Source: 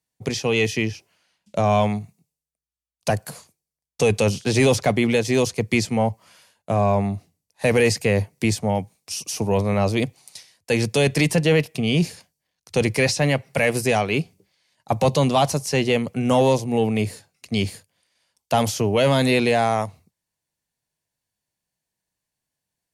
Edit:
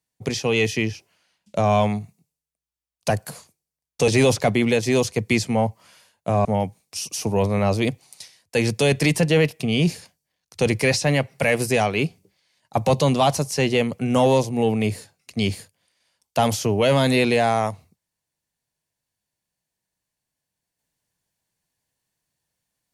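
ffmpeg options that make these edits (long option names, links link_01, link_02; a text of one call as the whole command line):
ffmpeg -i in.wav -filter_complex "[0:a]asplit=3[link_01][link_02][link_03];[link_01]atrim=end=4.082[link_04];[link_02]atrim=start=4.498:end=6.872[link_05];[link_03]atrim=start=8.598[link_06];[link_04][link_05]acrossfade=duration=0.004:curve1=hsin:curve2=hsin[link_07];[link_07][link_06]acrossfade=duration=0.004:curve1=hsin:curve2=hsin" out.wav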